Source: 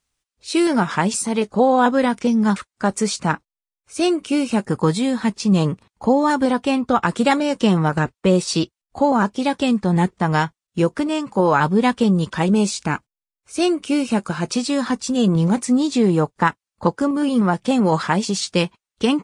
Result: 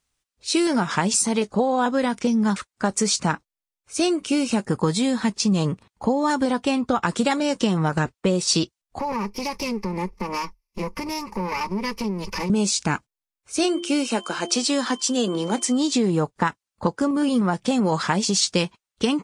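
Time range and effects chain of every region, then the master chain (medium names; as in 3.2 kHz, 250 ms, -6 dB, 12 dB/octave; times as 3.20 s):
8.99–12.50 s: comb filter that takes the minimum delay 3.4 ms + rippled EQ curve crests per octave 0.84, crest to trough 16 dB + compression 4:1, threshold -25 dBFS
13.63–15.93 s: high-pass 260 Hz 24 dB/octave + de-hum 346.3 Hz, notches 3 + whistle 3.1 kHz -42 dBFS
whole clip: compression, threshold -17 dBFS; dynamic bell 6 kHz, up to +6 dB, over -44 dBFS, Q 0.99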